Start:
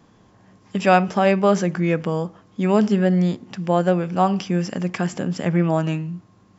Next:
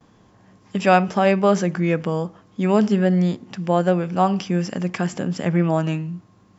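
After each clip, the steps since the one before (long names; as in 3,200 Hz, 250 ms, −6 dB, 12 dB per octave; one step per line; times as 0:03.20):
noise gate with hold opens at −48 dBFS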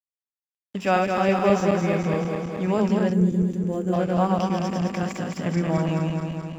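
feedback delay that plays each chunk backwards 107 ms, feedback 80%, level −3 dB
dead-zone distortion −40.5 dBFS
gain on a spectral selection 0:03.13–0:03.93, 520–5,900 Hz −13 dB
level −6 dB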